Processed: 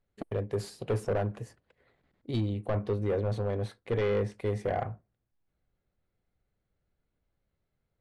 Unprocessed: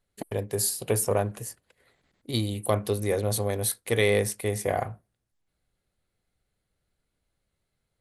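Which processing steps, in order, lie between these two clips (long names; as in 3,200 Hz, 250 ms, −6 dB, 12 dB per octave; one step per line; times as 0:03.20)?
gain into a clipping stage and back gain 22 dB
head-to-tape spacing loss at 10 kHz 25 dB, from 0:02.39 at 10 kHz 35 dB, from 0:04.33 at 10 kHz 27 dB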